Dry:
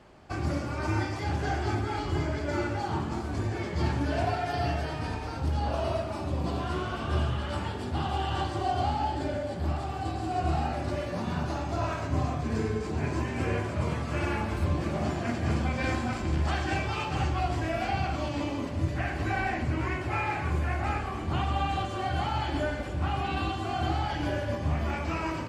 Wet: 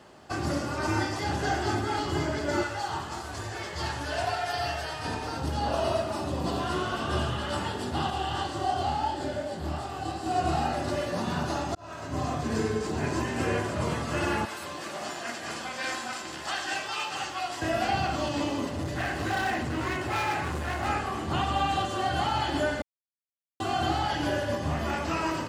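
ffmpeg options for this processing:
-filter_complex "[0:a]asettb=1/sr,asplit=3[s0][s1][s2];[s0]atrim=end=2.634[s3];[s1]atrim=start=2.63:end=5.05,asetpts=PTS-STARTPTS,afade=t=in:d=0.004:c=qsin,afade=t=out:st=2.416:d=0.004:c=qsin,equalizer=f=230:w=0.7:g=-13.5[s4];[s2]atrim=start=5.046[s5];[s3][s4]acrossfade=d=0.004:c1=hsin:c2=qsin[s6];[s6][s5]acrossfade=d=0.004:c1=qsin:c2=hsin,asettb=1/sr,asplit=3[s7][s8][s9];[s7]atrim=end=8.104[s10];[s8]atrim=start=8.1:end=10.26,asetpts=PTS-STARTPTS,afade=t=in:d=0.004:c=qsin,afade=t=out:st=2.156:d=0.004:c=qsin,flanger=delay=22.5:depth=5:speed=2.8[s11];[s9]atrim=start=10.256[s12];[s10][s11]acrossfade=d=0.004:c1=hsin:c2=qsin[s13];[s13][s12]acrossfade=d=0.004:c1=qsin:c2=hsin,asettb=1/sr,asplit=3[s14][s15][s16];[s14]atrim=end=14.454[s17];[s15]atrim=start=14.45:end=17.62,asetpts=PTS-STARTPTS,afade=t=in:d=0.004:c=qsin,afade=t=out:st=3.166:d=0.004:c=qsin,highpass=f=1200:p=1[s18];[s16]atrim=start=17.616[s19];[s17][s18]acrossfade=d=0.004:c1=hsin:c2=qsin[s20];[s20][s19]acrossfade=d=0.004:c1=qsin:c2=hsin,asettb=1/sr,asplit=3[s21][s22][s23];[s21]atrim=end=18.644[s24];[s22]atrim=start=18.64:end=20.88,asetpts=PTS-STARTPTS,afade=t=in:d=0.004:c=qsin,afade=t=out:st=2.236:d=0.004:c=qsin,asoftclip=type=hard:threshold=0.0473[s25];[s23]atrim=start=20.876[s26];[s24][s25]acrossfade=d=0.004:c1=hsin:c2=qsin[s27];[s27][s26]acrossfade=d=0.004:c1=qsin:c2=hsin,asplit=4[s28][s29][s30][s31];[s28]atrim=end=11.75,asetpts=PTS-STARTPTS,afade=t=out:st=11.746:d=0.004:c=hsin[s32];[s29]atrim=start=11.75:end=22.82,asetpts=PTS-STARTPTS,afade=t=in:d=0.61,afade=t=out:st=11.066:d=0.004:c=hsin[s33];[s30]atrim=start=22.82:end=23.6,asetpts=PTS-STARTPTS,volume=0[s34];[s31]atrim=start=23.6,asetpts=PTS-STARTPTS,afade=t=in:d=0.004:c=hsin[s35];[s32][s33][s34][s35]concat=n=4:v=0:a=1,highpass=f=180:p=1,highshelf=f=4700:g=6.5,bandreject=f=2300:w=8.6,volume=1.5"

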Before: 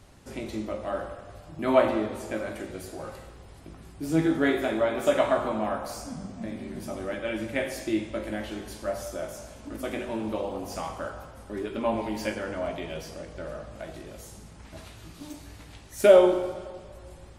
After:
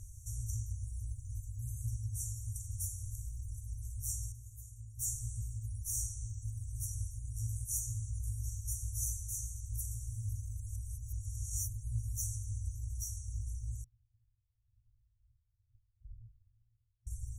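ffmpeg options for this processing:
-filter_complex "[0:a]asettb=1/sr,asplit=3[s0][s1][s2];[s0]atrim=end=13.844[s3];[s1]atrim=start=13.84:end=17.07,asetpts=PTS-STARTPTS,afade=t=in:d=0.004:c=qsin,afade=t=out:st=3.226:d=0.004:c=qsin,lowpass=f=2800:t=q:w=0.5098,lowpass=f=2800:t=q:w=0.6013,lowpass=f=2800:t=q:w=0.9,lowpass=f=2800:t=q:w=2.563,afreqshift=-3300[s4];[s2]atrim=start=17.066[s5];[s3][s4]acrossfade=d=0.004:c1=hsin:c2=qsin[s6];[s6][s5]acrossfade=d=0.004:c1=qsin:c2=hsin,asplit=5[s7][s8][s9][s10][s11];[s7]atrim=end=4.322[s12];[s8]atrim=start=4.318:end=4.992,asetpts=PTS-STARTPTS,volume=0.335[s13];[s9]atrim=start=4.988:end=10.602[s14];[s10]atrim=start=10.598:end=11.732,asetpts=PTS-STARTPTS,areverse[s15];[s11]atrim=start=11.728[s16];[s12][s13]acrossfade=d=0.004:c1=hsin:c2=hsin[s17];[s17][s14]acrossfade=d=0.004:c1=hsin:c2=hsin[s18];[s18][s15]acrossfade=d=0.004:c1=hsin:c2=hsin[s19];[s19][s16]acrossfade=d=0.004:c1=hsin:c2=hsin,afftfilt=real='re*(1-between(b*sr/4096,120,5600))':imag='im*(1-between(b*sr/4096,120,5600))':win_size=4096:overlap=0.75,volume=2.37"

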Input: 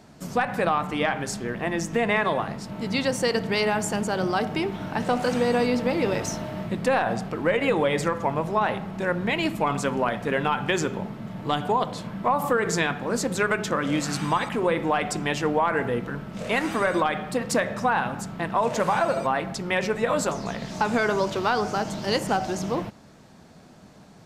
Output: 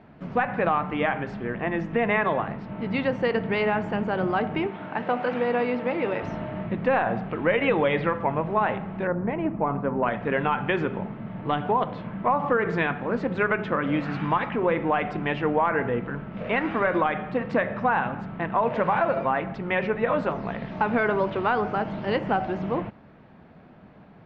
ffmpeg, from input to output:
-filter_complex "[0:a]asettb=1/sr,asplit=3[s0][s1][s2];[s0]atrim=end=4.674[s3];[s1]atrim=start=4.67:end=6.23,asetpts=PTS-STARTPTS,afade=t=in:d=0.004:c=qsin,afade=t=out:st=1.556:d=0.004:c=qsin,highpass=f=330:p=1[s4];[s2]atrim=start=6.226[s5];[s3][s4]acrossfade=d=0.004:c1=hsin:c2=qsin[s6];[s6][s5]acrossfade=d=0.004:c1=qsin:c2=hsin,asettb=1/sr,asplit=3[s7][s8][s9];[s7]atrim=end=7.294[s10];[s8]atrim=start=7.29:end=8.17,asetpts=PTS-STARTPTS,afade=t=in:d=0.004:c=qsin,afade=t=out:st=0.876:d=0.004:c=qsin,lowpass=f=3800:t=q:w=1.7[s11];[s9]atrim=start=8.166[s12];[s10][s11]acrossfade=d=0.004:c1=hsin:c2=qsin[s13];[s13][s12]acrossfade=d=0.004:c1=qsin:c2=hsin,asettb=1/sr,asplit=3[s14][s15][s16];[s14]atrim=end=9.074[s17];[s15]atrim=start=9.07:end=10.03,asetpts=PTS-STARTPTS,afade=t=in:d=0.004:c=qsin,afade=t=out:st=0.956:d=0.004:c=qsin,lowpass=1100[s18];[s16]atrim=start=10.026[s19];[s17][s18]acrossfade=d=0.004:c1=hsin:c2=qsin[s20];[s20][s19]acrossfade=d=0.004:c1=qsin:c2=hsin,lowpass=f=2700:w=0.5412,lowpass=f=2700:w=1.3066"

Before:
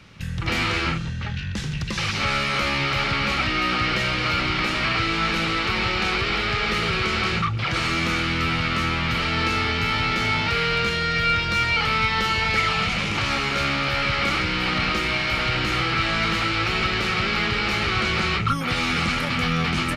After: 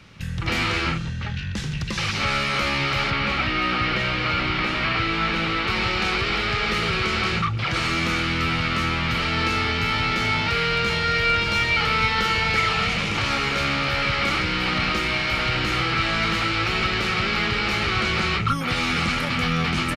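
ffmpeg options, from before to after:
-filter_complex "[0:a]asettb=1/sr,asplit=3[s0][s1][s2];[s0]atrim=end=3.104[s3];[s1]atrim=start=3.1:end=5.68,asetpts=PTS-STARTPTS,afade=t=in:d=0.004:c=qsin,afade=t=out:st=2.576:d=0.004:c=qsin,acrossover=split=4500[s4][s5];[s5]acompressor=threshold=0.00447:ratio=4:attack=1:release=60[s6];[s4][s6]amix=inputs=2:normalize=0[s7];[s2]atrim=start=5.676[s8];[s3][s7]acrossfade=d=0.004:c1=hsin:c2=qsin[s9];[s9][s8]acrossfade=d=0.004:c1=qsin:c2=hsin,asplit=2[s10][s11];[s11]afade=t=in:st=10.32:d=0.01,afade=t=out:st=11.25:d=0.01,aecho=0:1:570|1140|1710|2280|2850|3420|3990|4560|5130|5700|6270|6840:0.446684|0.335013|0.25126|0.188445|0.141333|0.106|0.0795001|0.0596251|0.0447188|0.0335391|0.0251543|0.0188657[s12];[s10][s12]amix=inputs=2:normalize=0"

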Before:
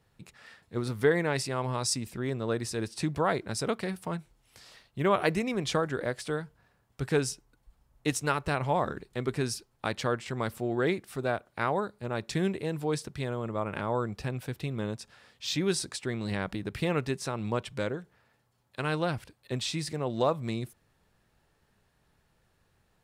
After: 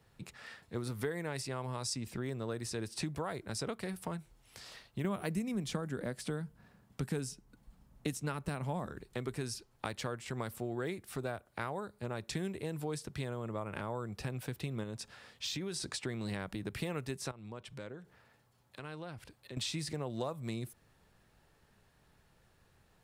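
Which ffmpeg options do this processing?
-filter_complex "[0:a]asettb=1/sr,asplit=3[s0][s1][s2];[s0]atrim=end=5.044[s3];[s1]atrim=start=5.04:end=8.86,asetpts=PTS-STARTPTS,afade=t=in:d=0.004:c=qsin,afade=t=out:st=3.816:d=0.004:c=qsin,equalizer=f=200:w=1.5:g=12[s4];[s2]atrim=start=8.856[s5];[s3][s4]acrossfade=d=0.004:c1=hsin:c2=qsin[s6];[s6][s5]acrossfade=d=0.004:c1=qsin:c2=hsin,asettb=1/sr,asplit=3[s7][s8][s9];[s7]atrim=end=14.834[s10];[s8]atrim=start=14.83:end=15.96,asetpts=PTS-STARTPTS,afade=t=in:d=0.004:c=qsin,afade=t=out:st=1.126:d=0.004:c=qsin,acompressor=threshold=0.0251:ratio=6:attack=3.2:release=140:knee=1:detection=peak[s11];[s9]atrim=start=15.956[s12];[s10][s11]acrossfade=d=0.004:c1=hsin:c2=qsin[s13];[s13][s12]acrossfade=d=0.004:c1=qsin:c2=hsin,asettb=1/sr,asplit=3[s14][s15][s16];[s14]atrim=end=17.314[s17];[s15]atrim=start=17.31:end=19.57,asetpts=PTS-STARTPTS,afade=t=in:d=0.004:c=qsin,afade=t=out:st=2.256:d=0.004:c=qsin,acompressor=threshold=0.00251:ratio=2.5:attack=3.2:release=140:knee=1:detection=peak[s18];[s16]atrim=start=19.566[s19];[s17][s18]acrossfade=d=0.004:c1=hsin:c2=qsin[s20];[s20][s19]acrossfade=d=0.004:c1=qsin:c2=hsin,acrossover=split=95|7800[s21][s22][s23];[s21]acompressor=threshold=0.00224:ratio=4[s24];[s22]acompressor=threshold=0.0112:ratio=4[s25];[s23]acompressor=threshold=0.00282:ratio=4[s26];[s24][s25][s26]amix=inputs=3:normalize=0,volume=1.26"

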